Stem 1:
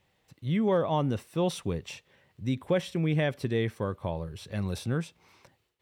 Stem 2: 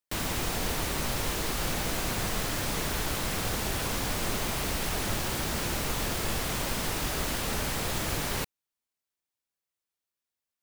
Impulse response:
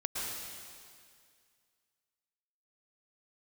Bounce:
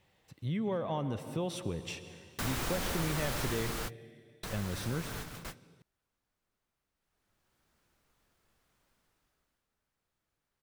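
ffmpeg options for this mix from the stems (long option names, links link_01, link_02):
-filter_complex "[0:a]acompressor=threshold=-31dB:ratio=2.5,volume=-1dB,asplit=3[link_01][link_02][link_03];[link_01]atrim=end=3.78,asetpts=PTS-STARTPTS,afade=type=out:start_time=3.776:duration=0.004:curve=hsin[link_04];[link_02]atrim=start=3.78:end=4.43,asetpts=PTS-STARTPTS,volume=0[link_05];[link_03]atrim=start=4.43,asetpts=PTS-STARTPTS,afade=type=in:duration=0.004:curve=hsin[link_06];[link_04][link_05][link_06]concat=n=3:v=0:a=1,asplit=3[link_07][link_08][link_09];[link_08]volume=-13dB[link_10];[1:a]equalizer=frequency=1400:width=1.7:gain=4,acontrast=54,adelay=2200,volume=3dB,afade=type=out:start_time=3.39:duration=0.78:silence=0.375837,afade=type=in:start_time=6.96:duration=0.73:silence=0.266073,afade=type=out:start_time=8.9:duration=0.78:silence=0.281838[link_11];[link_09]apad=whole_len=565711[link_12];[link_11][link_12]sidechaingate=range=-45dB:threshold=-59dB:ratio=16:detection=peak[link_13];[2:a]atrim=start_sample=2205[link_14];[link_10][link_14]afir=irnorm=-1:irlink=0[link_15];[link_07][link_13][link_15]amix=inputs=3:normalize=0,acompressor=threshold=-35dB:ratio=1.5"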